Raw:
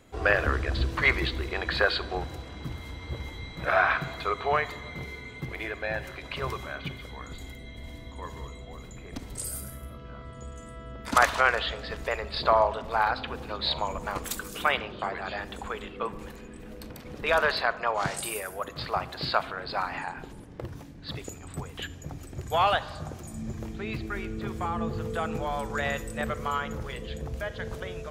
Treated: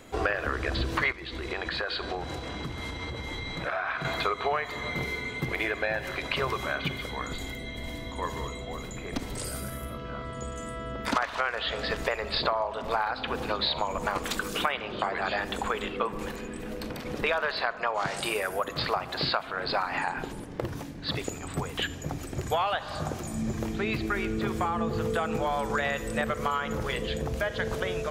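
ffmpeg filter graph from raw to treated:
ffmpeg -i in.wav -filter_complex "[0:a]asettb=1/sr,asplit=3[link_01][link_02][link_03];[link_01]atrim=end=1.124[link_04];[link_02]atrim=start=1.12:end=4.05,asetpts=PTS-STARTPTS,afade=type=in:duration=0.004:curve=qsin,afade=type=out:start_time=2.926:duration=0.004:curve=qsin,lowpass=10000,acompressor=threshold=-36dB:ratio=6:attack=3.2:release=140:knee=1:detection=peak[link_05];[link_03]atrim=start=4.046[link_06];[link_04][link_05]acrossfade=duration=0.004:curve1=hsin:curve2=qsin[link_07];[link_07][link_06]acrossfade=duration=0.004:curve1=qsin:curve2=hsin,acrossover=split=5200[link_08][link_09];[link_09]acompressor=threshold=-50dB:ratio=4:attack=1:release=60[link_10];[link_08][link_10]amix=inputs=2:normalize=0,equalizer=frequency=62:width=0.5:gain=-7,acompressor=threshold=-33dB:ratio=8,volume=8.5dB" out.wav

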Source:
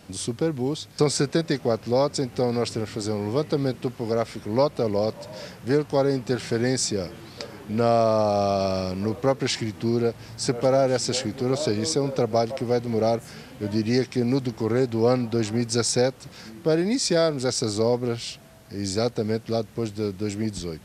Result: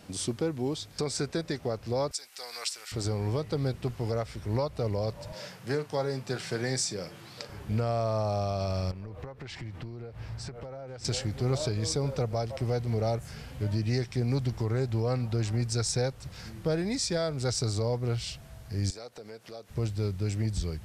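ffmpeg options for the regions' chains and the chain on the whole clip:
ffmpeg -i in.wav -filter_complex "[0:a]asettb=1/sr,asplit=3[link_01][link_02][link_03];[link_01]atrim=end=2.114[link_04];[link_02]atrim=start=2.11:end=2.92,asetpts=PTS-STARTPTS,afade=type=in:duration=0.004:curve=qsin,afade=type=out:start_time=0.806:duration=0.004:curve=qsin,highpass=1400,highshelf=frequency=5000:gain=11.5[link_05];[link_03]atrim=start=2.916[link_06];[link_04][link_05]acrossfade=duration=0.004:curve1=hsin:curve2=qsin[link_07];[link_07][link_06]acrossfade=duration=0.004:curve1=qsin:curve2=hsin,asettb=1/sr,asplit=3[link_08][link_09][link_10];[link_08]atrim=end=5.324[link_11];[link_09]atrim=start=5.32:end=7.5,asetpts=PTS-STARTPTS,afade=type=in:duration=0.004:curve=qsin,afade=type=out:start_time=2.176:duration=0.004:curve=qsin,highpass=frequency=130:width=0.5412,highpass=frequency=130:width=1.3066,lowshelf=frequency=420:gain=-5,asplit=2[link_12][link_13];[link_13]adelay=38,volume=-13dB[link_14];[link_12][link_14]amix=inputs=2:normalize=0,atrim=end_sample=96138[link_15];[link_10]atrim=start=7.496[link_16];[link_11][link_15]acrossfade=duration=0.004:curve1=hsin:curve2=qsin[link_17];[link_17][link_16]acrossfade=duration=0.004:curve1=qsin:curve2=hsin,asettb=1/sr,asplit=3[link_18][link_19][link_20];[link_18]atrim=end=8.914[link_21];[link_19]atrim=start=8.91:end=11.05,asetpts=PTS-STARTPTS,afade=type=in:duration=0.004:curve=qsin,afade=type=out:start_time=2.136:duration=0.004:curve=qsin,bass=frequency=250:gain=-3,treble=frequency=4000:gain=-12,acompressor=threshold=-35dB:ratio=8:attack=3.2:release=140:knee=1:detection=peak[link_22];[link_20]atrim=start=11.046[link_23];[link_21][link_22]acrossfade=duration=0.004:curve1=hsin:curve2=qsin[link_24];[link_24][link_23]acrossfade=duration=0.004:curve1=qsin:curve2=hsin,asettb=1/sr,asplit=3[link_25][link_26][link_27];[link_25]atrim=end=18.904[link_28];[link_26]atrim=start=18.9:end=19.7,asetpts=PTS-STARTPTS,afade=type=in:duration=0.004:curve=qsin,afade=type=out:start_time=0.796:duration=0.004:curve=qsin,highpass=350,acompressor=threshold=-41dB:ratio=2.5:attack=3.2:release=140:knee=1:detection=peak[link_29];[link_27]atrim=start=19.696[link_30];[link_28][link_29]acrossfade=duration=0.004:curve1=hsin:curve2=qsin[link_31];[link_31][link_30]acrossfade=duration=0.004:curve1=qsin:curve2=hsin,asubboost=boost=8.5:cutoff=85,alimiter=limit=-17dB:level=0:latency=1:release=408,volume=-2.5dB" out.wav

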